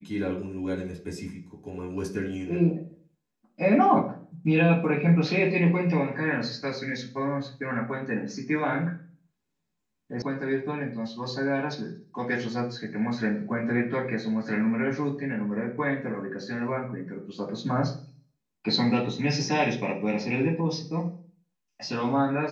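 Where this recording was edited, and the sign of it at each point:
10.22 sound cut off

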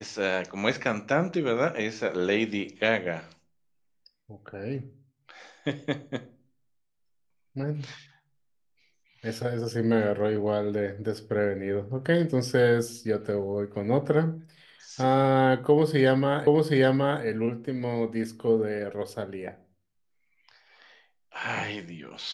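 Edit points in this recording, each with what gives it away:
16.47 repeat of the last 0.77 s

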